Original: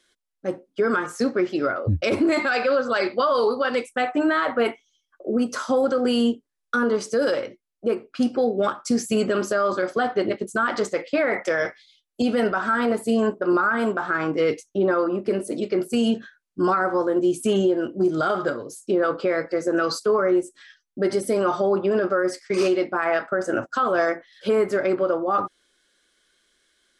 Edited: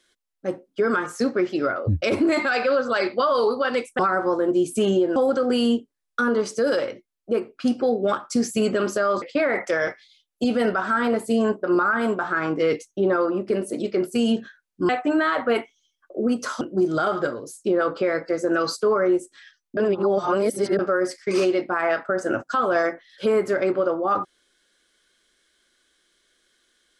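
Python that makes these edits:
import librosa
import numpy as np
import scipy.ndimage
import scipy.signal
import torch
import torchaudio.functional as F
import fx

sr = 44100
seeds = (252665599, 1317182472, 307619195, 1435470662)

y = fx.edit(x, sr, fx.swap(start_s=3.99, length_s=1.72, other_s=16.67, other_length_s=1.17),
    fx.cut(start_s=9.77, length_s=1.23),
    fx.reverse_span(start_s=21.0, length_s=1.02), tone=tone)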